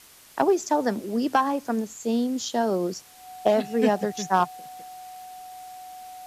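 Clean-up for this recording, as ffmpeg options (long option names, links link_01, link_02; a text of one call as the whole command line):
ffmpeg -i in.wav -af "adeclick=threshold=4,bandreject=frequency=740:width=30,afwtdn=0.0032" out.wav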